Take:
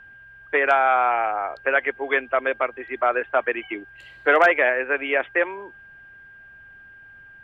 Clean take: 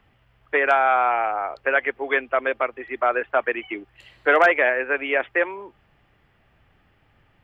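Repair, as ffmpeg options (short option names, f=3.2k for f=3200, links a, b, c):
-af "bandreject=f=1.6k:w=30"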